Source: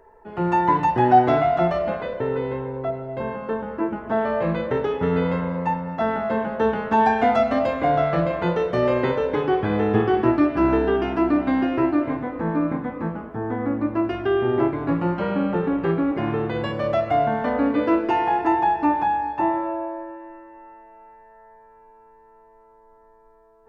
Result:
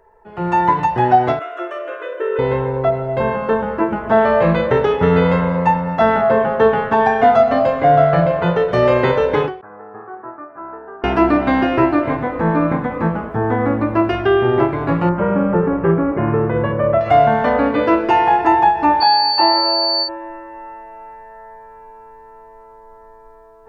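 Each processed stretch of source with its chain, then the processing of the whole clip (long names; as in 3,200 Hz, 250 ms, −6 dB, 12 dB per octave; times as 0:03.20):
0:01.39–0:02.39: linear-phase brick-wall high-pass 300 Hz + parametric band 2,100 Hz −10 dB 0.34 octaves + phaser with its sweep stopped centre 1,900 Hz, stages 4
0:06.21–0:08.72: high-shelf EQ 5,000 Hz −10.5 dB + comb filter 7.3 ms, depth 50% + single-tap delay 249 ms −20.5 dB
0:09.61–0:11.04: Butterworth low-pass 1,400 Hz + first difference
0:15.09–0:17.01: Gaussian smoothing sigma 4.5 samples + notch filter 760 Hz, Q 6.8
0:19.00–0:20.07: high-pass filter 340 Hz + steady tone 4,500 Hz −25 dBFS
whole clip: parametric band 280 Hz −7 dB 0.68 octaves; automatic gain control; every ending faded ahead of time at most 130 dB per second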